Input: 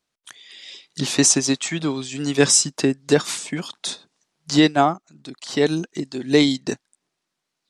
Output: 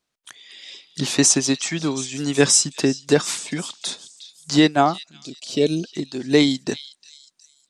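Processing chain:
gain on a spectral selection 0:05.23–0:05.84, 710–2,200 Hz −14 dB
echo through a band-pass that steps 363 ms, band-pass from 3,900 Hz, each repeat 0.7 octaves, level −12 dB

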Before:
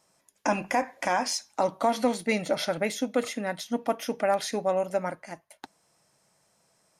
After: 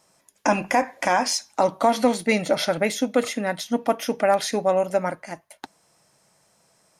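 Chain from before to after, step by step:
level +5.5 dB

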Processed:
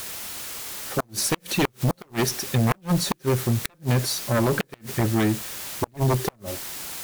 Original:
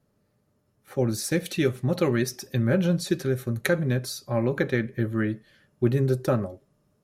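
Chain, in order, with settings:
background noise white −42 dBFS
harmonic generator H 2 −30 dB, 6 −14 dB, 7 −7 dB, 8 −31 dB, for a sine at −5.5 dBFS
gate with flip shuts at −13 dBFS, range −37 dB
level +1 dB

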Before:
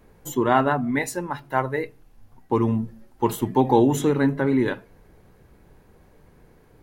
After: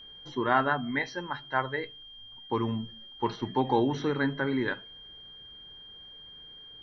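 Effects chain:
Chebyshev low-pass with heavy ripple 5,900 Hz, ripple 9 dB
steady tone 3,200 Hz −46 dBFS

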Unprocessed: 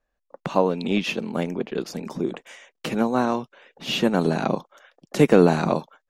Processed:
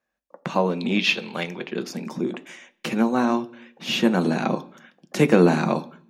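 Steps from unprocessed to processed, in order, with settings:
0:00.99–0:01.68: graphic EQ with 10 bands 250 Hz −11 dB, 2,000 Hz +3 dB, 4,000 Hz +9 dB, 8,000 Hz −3 dB
convolution reverb RT60 0.55 s, pre-delay 3 ms, DRR 11.5 dB

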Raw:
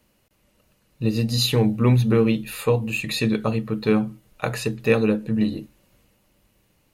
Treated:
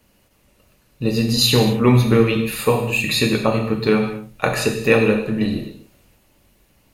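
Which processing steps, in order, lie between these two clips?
harmonic and percussive parts rebalanced percussive +5 dB
reverb whose tail is shaped and stops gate 290 ms falling, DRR 2 dB
level +1 dB

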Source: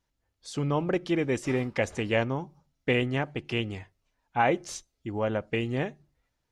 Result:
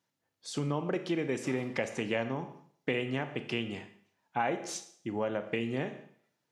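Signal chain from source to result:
high-pass filter 130 Hz 24 dB per octave
four-comb reverb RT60 0.56 s, combs from 27 ms, DRR 9.5 dB
downward compressor 2.5 to 1, threshold −30 dBFS, peak gain reduction 8 dB

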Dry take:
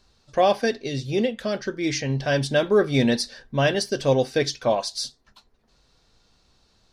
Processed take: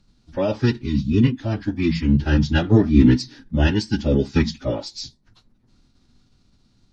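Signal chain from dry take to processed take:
phase-vocoder pitch shift with formants kept −11 semitones
low shelf with overshoot 350 Hz +9.5 dB, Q 1.5
level −2 dB

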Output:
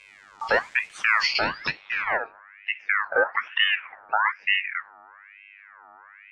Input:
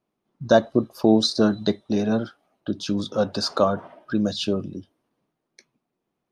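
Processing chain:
hearing-aid frequency compression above 2,100 Hz 1.5 to 1
noise gate −43 dBFS, range −17 dB
0:01.35–0:02.82: spectral tilt +3.5 dB per octave
in parallel at +1.5 dB: downward compressor 10 to 1, threshold −29 dBFS, peak gain reduction 18.5 dB
on the sum: hum with harmonics 100 Hz, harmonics 19, −48 dBFS −5 dB per octave
bit-depth reduction 8 bits, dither none
low-pass filter sweep 5,800 Hz → 490 Hz, 0:01.17–0:02.33
boost into a limiter +6 dB
ring modulator whose carrier an LFO sweeps 1,700 Hz, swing 40%, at 1.1 Hz
level −8 dB

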